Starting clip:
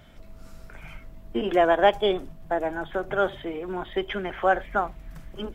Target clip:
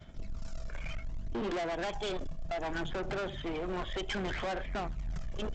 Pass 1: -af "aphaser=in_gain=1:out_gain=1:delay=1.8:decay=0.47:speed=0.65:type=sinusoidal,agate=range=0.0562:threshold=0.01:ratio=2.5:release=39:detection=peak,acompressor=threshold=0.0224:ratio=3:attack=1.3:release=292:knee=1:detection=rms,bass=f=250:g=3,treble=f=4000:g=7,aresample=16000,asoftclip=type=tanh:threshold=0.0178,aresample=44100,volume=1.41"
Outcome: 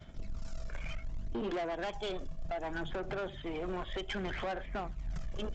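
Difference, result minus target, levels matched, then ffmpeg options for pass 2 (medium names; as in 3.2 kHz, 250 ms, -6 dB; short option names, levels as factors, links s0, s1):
compression: peak gain reduction +6 dB
-af "aphaser=in_gain=1:out_gain=1:delay=1.8:decay=0.47:speed=0.65:type=sinusoidal,agate=range=0.0562:threshold=0.01:ratio=2.5:release=39:detection=peak,acompressor=threshold=0.0631:ratio=3:attack=1.3:release=292:knee=1:detection=rms,bass=f=250:g=3,treble=f=4000:g=7,aresample=16000,asoftclip=type=tanh:threshold=0.0178,aresample=44100,volume=1.41"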